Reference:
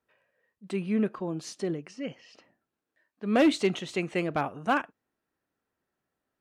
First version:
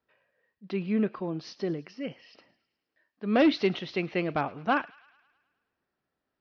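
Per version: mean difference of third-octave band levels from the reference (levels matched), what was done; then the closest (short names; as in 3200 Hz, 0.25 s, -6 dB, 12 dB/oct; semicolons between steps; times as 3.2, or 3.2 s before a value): 2.0 dB: steep low-pass 5500 Hz 72 dB/oct; thin delay 0.106 s, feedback 60%, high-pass 1700 Hz, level -19 dB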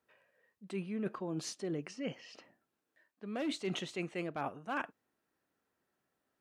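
4.5 dB: low shelf 71 Hz -10 dB; reverse; compressor 10:1, threshold -35 dBFS, peak gain reduction 17 dB; reverse; gain +1 dB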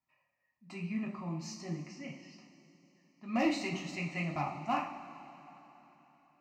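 7.0 dB: fixed phaser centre 2300 Hz, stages 8; two-slope reverb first 0.43 s, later 3.8 s, from -17 dB, DRR -2 dB; gain -6.5 dB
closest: first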